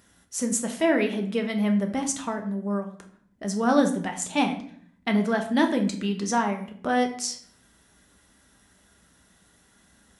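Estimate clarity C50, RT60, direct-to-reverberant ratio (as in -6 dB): 10.5 dB, 0.60 s, 3.5 dB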